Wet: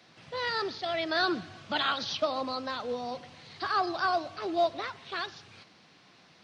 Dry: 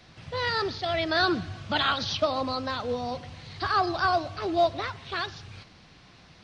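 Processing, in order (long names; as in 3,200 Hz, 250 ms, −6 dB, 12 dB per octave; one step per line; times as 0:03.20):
high-pass filter 200 Hz 12 dB per octave
level −3.5 dB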